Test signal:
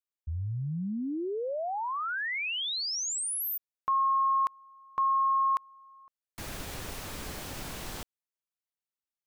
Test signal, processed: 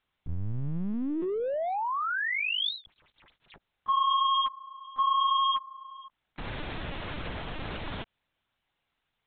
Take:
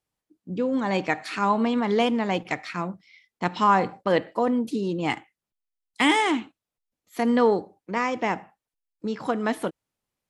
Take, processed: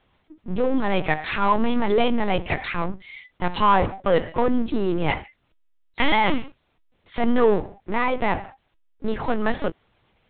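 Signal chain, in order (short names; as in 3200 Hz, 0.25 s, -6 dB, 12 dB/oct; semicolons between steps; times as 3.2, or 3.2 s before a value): power-law curve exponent 0.7; LPC vocoder at 8 kHz pitch kept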